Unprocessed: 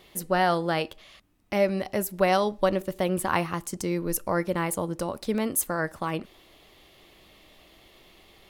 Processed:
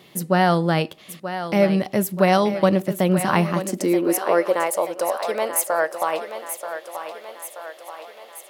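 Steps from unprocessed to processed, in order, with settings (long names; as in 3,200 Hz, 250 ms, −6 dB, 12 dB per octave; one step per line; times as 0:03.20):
feedback echo with a high-pass in the loop 931 ms, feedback 58%, high-pass 260 Hz, level −9.5 dB
high-pass filter sweep 150 Hz → 610 Hz, 0:03.29–0:04.72
level +4 dB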